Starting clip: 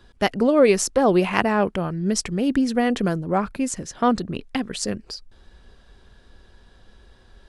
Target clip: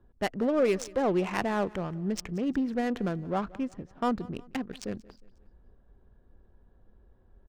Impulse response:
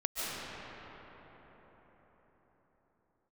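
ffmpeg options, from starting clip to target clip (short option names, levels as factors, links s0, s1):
-filter_complex "[0:a]adynamicsmooth=sensitivity=2.5:basefreq=850,asoftclip=type=tanh:threshold=0.355,asplit=2[s0][s1];[s1]aecho=0:1:180|360|540:0.0794|0.0365|0.0168[s2];[s0][s2]amix=inputs=2:normalize=0,volume=0.422"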